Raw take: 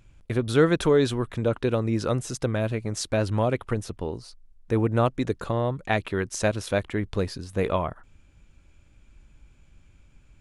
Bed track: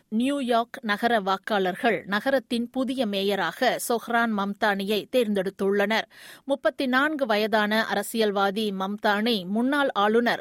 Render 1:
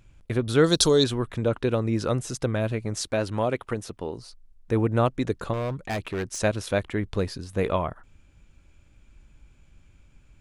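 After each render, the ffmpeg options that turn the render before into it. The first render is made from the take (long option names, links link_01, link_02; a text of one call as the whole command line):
ffmpeg -i in.wav -filter_complex "[0:a]asettb=1/sr,asplit=3[link_01][link_02][link_03];[link_01]atrim=end=0.644[link_04];[link_02]atrim=start=0.64:end=1.04,asetpts=PTS-STARTPTS,afade=type=in:duration=0.004:curve=qsin,afade=type=out:start_time=0.396:duration=0.004:curve=qsin,highshelf=frequency=3200:width_type=q:width=3:gain=13[link_05];[link_03]atrim=start=1.036[link_06];[link_04][link_05]acrossfade=duration=0.004:curve1=hsin:curve2=qsin[link_07];[link_07][link_06]acrossfade=duration=0.004:curve1=qsin:curve2=hsin,asettb=1/sr,asplit=3[link_08][link_09][link_10];[link_08]atrim=end=3.074[link_11];[link_09]atrim=start=3.07:end=4.18,asetpts=PTS-STARTPTS,afade=type=in:duration=0.004:curve=qsin,afade=type=out:start_time=1.106:duration=0.004:curve=qsin,lowshelf=frequency=130:gain=-10[link_12];[link_10]atrim=start=4.176[link_13];[link_11][link_12]acrossfade=duration=0.004:curve1=hsin:curve2=qsin[link_14];[link_14][link_13]acrossfade=duration=0.004:curve1=qsin:curve2=hsin,asettb=1/sr,asplit=3[link_15][link_16][link_17];[link_15]atrim=end=5.534[link_18];[link_16]atrim=start=5.53:end=6.39,asetpts=PTS-STARTPTS,afade=type=in:duration=0.004:curve=qsin,afade=type=out:start_time=0.856:duration=0.004:curve=qsin,volume=25dB,asoftclip=hard,volume=-25dB[link_19];[link_17]atrim=start=6.386[link_20];[link_18][link_19]acrossfade=duration=0.004:curve1=hsin:curve2=qsin[link_21];[link_21][link_20]acrossfade=duration=0.004:curve1=qsin:curve2=hsin" out.wav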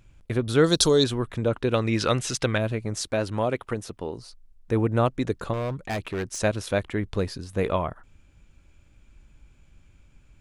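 ffmpeg -i in.wav -filter_complex "[0:a]asettb=1/sr,asplit=3[link_01][link_02][link_03];[link_01]atrim=end=1.744[link_04];[link_02]atrim=start=1.74:end=2.58,asetpts=PTS-STARTPTS,afade=type=in:duration=0.004:curve=qsin,afade=type=out:start_time=0.836:duration=0.004:curve=qsin,equalizer=frequency=2900:width_type=o:width=2.5:gain=12[link_05];[link_03]atrim=start=2.576[link_06];[link_04][link_05]acrossfade=duration=0.004:curve1=hsin:curve2=qsin[link_07];[link_07][link_06]acrossfade=duration=0.004:curve1=qsin:curve2=hsin" out.wav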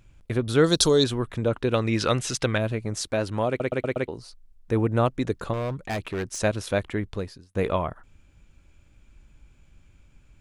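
ffmpeg -i in.wav -filter_complex "[0:a]asplit=7[link_01][link_02][link_03][link_04][link_05][link_06][link_07];[link_01]atrim=end=3.602[link_08];[link_02]atrim=start=3.478:end=3.602[link_09];[link_03]atrim=start=3.478:end=3.602[link_10];[link_04]atrim=start=3.478:end=3.602[link_11];[link_05]atrim=start=3.478:end=3.602[link_12];[link_06]atrim=start=4.078:end=7.55,asetpts=PTS-STARTPTS,afade=type=out:start_time=2.862:duration=0.61[link_13];[link_07]atrim=start=7.55,asetpts=PTS-STARTPTS,afade=type=in:duration=0.004:curve=hsin[link_14];[link_08][link_09]acrossfade=duration=0.004:curve1=hsin:curve2=hsin[link_15];[link_15][link_10]acrossfade=duration=0.004:curve1=hsin:curve2=hsin[link_16];[link_16][link_11]acrossfade=duration=0.004:curve1=hsin:curve2=hsin[link_17];[link_17][link_12]acrossfade=duration=0.004:curve1=hsin:curve2=hsin[link_18];[link_13][link_14]concat=n=2:v=0:a=1[link_19];[link_18][link_19]acrossfade=duration=0.004:curve1=hsin:curve2=hsin" out.wav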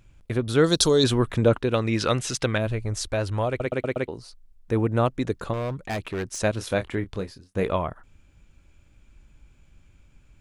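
ffmpeg -i in.wav -filter_complex "[0:a]asplit=3[link_01][link_02][link_03];[link_01]afade=type=out:start_time=1.03:duration=0.02[link_04];[link_02]acontrast=43,afade=type=in:start_time=1.03:duration=0.02,afade=type=out:start_time=1.57:duration=0.02[link_05];[link_03]afade=type=in:start_time=1.57:duration=0.02[link_06];[link_04][link_05][link_06]amix=inputs=3:normalize=0,asplit=3[link_07][link_08][link_09];[link_07]afade=type=out:start_time=2.66:duration=0.02[link_10];[link_08]asubboost=boost=8.5:cutoff=71,afade=type=in:start_time=2.66:duration=0.02,afade=type=out:start_time=3.65:duration=0.02[link_11];[link_09]afade=type=in:start_time=3.65:duration=0.02[link_12];[link_10][link_11][link_12]amix=inputs=3:normalize=0,asettb=1/sr,asplit=3[link_13][link_14][link_15];[link_13]atrim=end=6.544[link_16];[link_14]atrim=start=6.54:end=7.64,asetpts=PTS-STARTPTS,afade=type=in:duration=0.004:curve=qsin,afade=type=out:start_time=1.096:duration=0.004:curve=qsin,asplit=2[link_17][link_18];[link_18]adelay=26,volume=-9.5dB[link_19];[link_17][link_19]amix=inputs=2:normalize=0,atrim=end_sample=48510[link_20];[link_15]atrim=start=7.636[link_21];[link_16][link_20]acrossfade=duration=0.004:curve1=hsin:curve2=qsin[link_22];[link_22][link_21]acrossfade=duration=0.004:curve1=qsin:curve2=hsin" out.wav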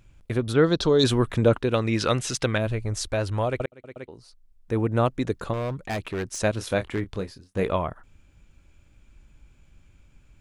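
ffmpeg -i in.wav -filter_complex "[0:a]asplit=3[link_01][link_02][link_03];[link_01]afade=type=out:start_time=0.52:duration=0.02[link_04];[link_02]lowpass=2700,afade=type=in:start_time=0.52:duration=0.02,afade=type=out:start_time=0.98:duration=0.02[link_05];[link_03]afade=type=in:start_time=0.98:duration=0.02[link_06];[link_04][link_05][link_06]amix=inputs=3:normalize=0,asplit=3[link_07][link_08][link_09];[link_07]afade=type=out:start_time=6.86:duration=0.02[link_10];[link_08]aeval=exprs='0.126*(abs(mod(val(0)/0.126+3,4)-2)-1)':channel_layout=same,afade=type=in:start_time=6.86:duration=0.02,afade=type=out:start_time=7.57:duration=0.02[link_11];[link_09]afade=type=in:start_time=7.57:duration=0.02[link_12];[link_10][link_11][link_12]amix=inputs=3:normalize=0,asplit=2[link_13][link_14];[link_13]atrim=end=3.66,asetpts=PTS-STARTPTS,afade=type=out:start_time=3.656:duration=0.004:curve=hsin[link_15];[link_14]atrim=start=3.66,asetpts=PTS-STARTPTS,afade=type=in:duration=1.33[link_16];[link_15][link_16]concat=n=2:v=0:a=1" out.wav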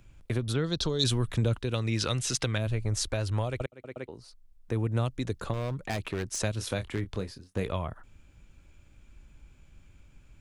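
ffmpeg -i in.wav -filter_complex "[0:a]acrossover=split=140|3000[link_01][link_02][link_03];[link_02]acompressor=threshold=-31dB:ratio=5[link_04];[link_01][link_04][link_03]amix=inputs=3:normalize=0" out.wav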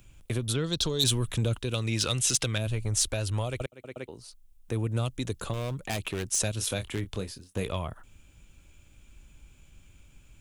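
ffmpeg -i in.wav -af "asoftclip=type=tanh:threshold=-17dB,aexciter=amount=1.9:drive=5.1:freq=2600" out.wav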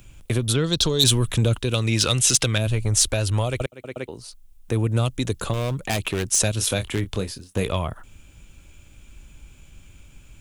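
ffmpeg -i in.wav -af "volume=7.5dB" out.wav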